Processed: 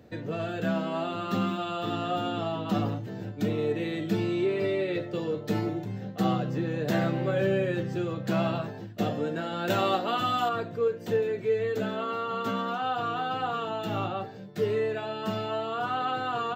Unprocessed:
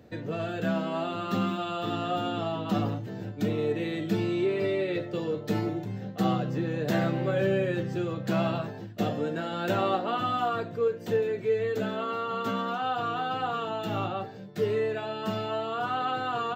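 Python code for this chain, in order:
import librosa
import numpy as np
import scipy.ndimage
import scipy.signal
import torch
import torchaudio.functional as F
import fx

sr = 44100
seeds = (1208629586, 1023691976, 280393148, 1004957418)

y = fx.high_shelf(x, sr, hz=3500.0, db=11.0, at=(9.7, 10.49))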